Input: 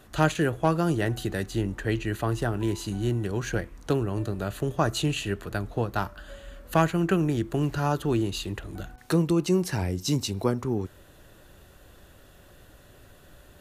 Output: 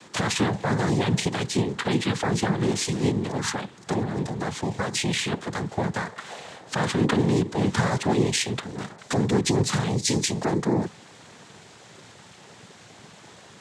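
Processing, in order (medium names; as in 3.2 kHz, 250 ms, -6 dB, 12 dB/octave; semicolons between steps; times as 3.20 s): treble shelf 2.5 kHz +7.5 dB; peak limiter -19 dBFS, peak gain reduction 11.5 dB; 3.08–5.32 s: compression 2:1, threshold -30 dBFS, peak gain reduction 4 dB; noise-vocoded speech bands 6; trim +6 dB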